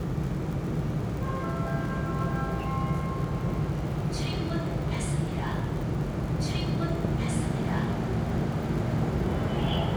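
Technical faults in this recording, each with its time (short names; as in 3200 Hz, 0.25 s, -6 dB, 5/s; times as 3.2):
crackle 55/s -36 dBFS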